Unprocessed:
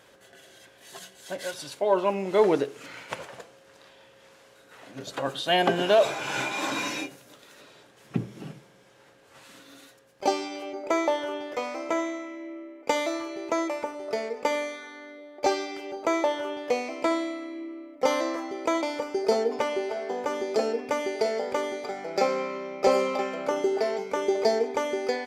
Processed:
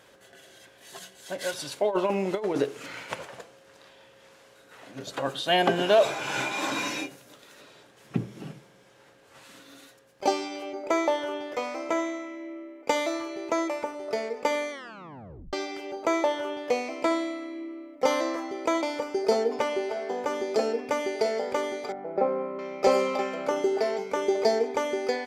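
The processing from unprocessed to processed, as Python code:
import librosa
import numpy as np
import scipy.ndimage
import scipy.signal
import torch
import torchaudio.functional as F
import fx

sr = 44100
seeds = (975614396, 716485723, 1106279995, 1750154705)

y = fx.over_compress(x, sr, threshold_db=-24.0, ratio=-0.5, at=(1.41, 3.12))
y = fx.lowpass(y, sr, hz=1000.0, slope=12, at=(21.92, 22.59))
y = fx.edit(y, sr, fx.tape_stop(start_s=14.71, length_s=0.82), tone=tone)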